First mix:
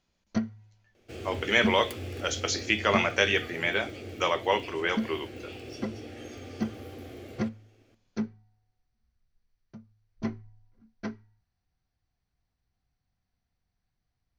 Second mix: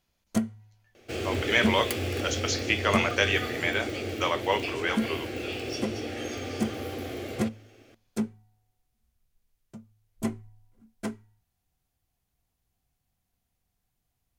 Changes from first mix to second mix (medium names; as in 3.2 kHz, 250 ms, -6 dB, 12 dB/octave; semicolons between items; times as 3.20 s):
first sound: remove rippled Chebyshev low-pass 6.1 kHz, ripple 6 dB; second sound +10.5 dB; master: add bass shelf 330 Hz -5.5 dB